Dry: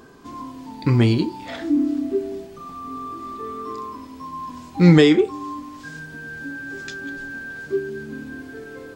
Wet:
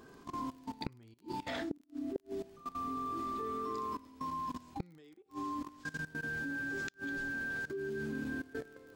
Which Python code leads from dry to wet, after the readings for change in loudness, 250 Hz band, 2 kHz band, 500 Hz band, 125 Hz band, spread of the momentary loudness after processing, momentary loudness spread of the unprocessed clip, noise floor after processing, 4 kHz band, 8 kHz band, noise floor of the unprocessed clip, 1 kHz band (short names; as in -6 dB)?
-18.0 dB, -20.0 dB, -7.5 dB, -19.0 dB, -26.5 dB, 8 LU, 20 LU, -62 dBFS, -18.5 dB, n/a, -40 dBFS, -7.0 dB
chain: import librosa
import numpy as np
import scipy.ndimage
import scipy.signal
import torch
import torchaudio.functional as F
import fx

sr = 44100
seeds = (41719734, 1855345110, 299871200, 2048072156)

y = fx.level_steps(x, sr, step_db=18)
y = fx.gate_flip(y, sr, shuts_db=-22.0, range_db=-37)
y = fx.dmg_crackle(y, sr, seeds[0], per_s=31.0, level_db=-48.0)
y = F.gain(torch.from_numpy(y), -2.0).numpy()